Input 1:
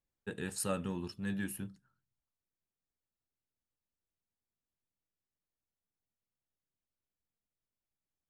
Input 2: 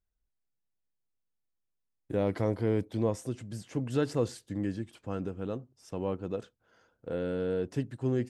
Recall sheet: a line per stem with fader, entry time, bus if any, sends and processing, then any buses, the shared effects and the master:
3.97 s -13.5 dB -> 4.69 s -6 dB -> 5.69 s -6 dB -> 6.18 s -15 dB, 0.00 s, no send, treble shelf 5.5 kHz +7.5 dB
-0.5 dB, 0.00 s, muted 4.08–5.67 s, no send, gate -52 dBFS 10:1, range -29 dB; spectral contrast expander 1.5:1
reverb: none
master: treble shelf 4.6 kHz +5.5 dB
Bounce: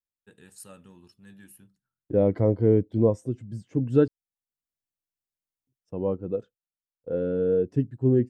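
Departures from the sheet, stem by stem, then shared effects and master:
stem 2 -0.5 dB -> +8.0 dB; master: missing treble shelf 4.6 kHz +5.5 dB

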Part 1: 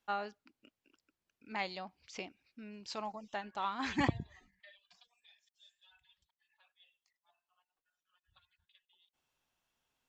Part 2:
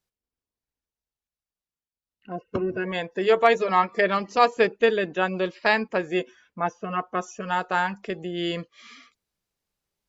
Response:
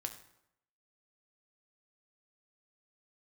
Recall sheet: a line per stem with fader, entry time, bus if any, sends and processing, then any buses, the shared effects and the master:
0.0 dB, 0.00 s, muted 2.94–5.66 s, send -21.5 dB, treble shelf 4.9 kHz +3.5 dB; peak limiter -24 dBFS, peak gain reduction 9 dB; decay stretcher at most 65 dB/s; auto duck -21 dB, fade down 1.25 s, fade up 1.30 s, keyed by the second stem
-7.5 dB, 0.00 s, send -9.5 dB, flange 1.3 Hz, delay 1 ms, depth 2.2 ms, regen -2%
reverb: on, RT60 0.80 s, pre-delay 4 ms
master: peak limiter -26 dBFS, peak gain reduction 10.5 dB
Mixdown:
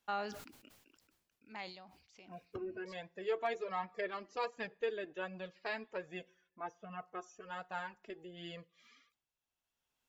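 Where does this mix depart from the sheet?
stem 2 -7.5 dB -> -15.5 dB; reverb return -6.5 dB

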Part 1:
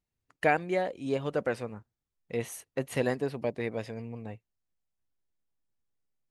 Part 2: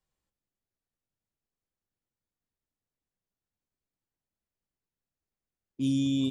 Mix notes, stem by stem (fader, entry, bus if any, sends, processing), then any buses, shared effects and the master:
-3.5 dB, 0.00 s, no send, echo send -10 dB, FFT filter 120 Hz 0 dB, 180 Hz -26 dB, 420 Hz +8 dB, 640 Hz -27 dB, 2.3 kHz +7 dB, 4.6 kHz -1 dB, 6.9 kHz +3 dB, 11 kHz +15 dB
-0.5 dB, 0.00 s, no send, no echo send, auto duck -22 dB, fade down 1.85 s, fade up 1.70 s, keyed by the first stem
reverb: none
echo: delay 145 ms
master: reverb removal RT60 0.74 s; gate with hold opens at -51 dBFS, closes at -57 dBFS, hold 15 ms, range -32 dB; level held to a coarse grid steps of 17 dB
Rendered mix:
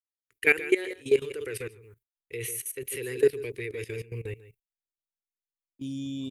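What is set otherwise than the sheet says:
stem 1 -3.5 dB -> +8.0 dB; master: missing reverb removal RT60 0.74 s

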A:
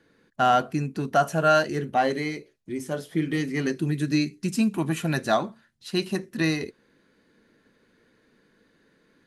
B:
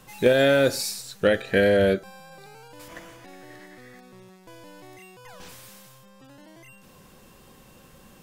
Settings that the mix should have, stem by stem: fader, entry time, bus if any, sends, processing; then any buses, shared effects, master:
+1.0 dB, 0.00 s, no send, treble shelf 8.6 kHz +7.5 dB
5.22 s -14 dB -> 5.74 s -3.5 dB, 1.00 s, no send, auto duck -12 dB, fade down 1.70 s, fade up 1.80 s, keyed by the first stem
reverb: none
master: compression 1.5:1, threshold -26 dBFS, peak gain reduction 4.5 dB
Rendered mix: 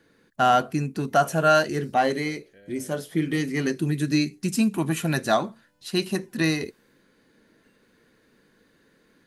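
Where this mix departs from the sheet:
stem B -14.0 dB -> -22.0 dB; master: missing compression 1.5:1, threshold -26 dBFS, peak gain reduction 4.5 dB

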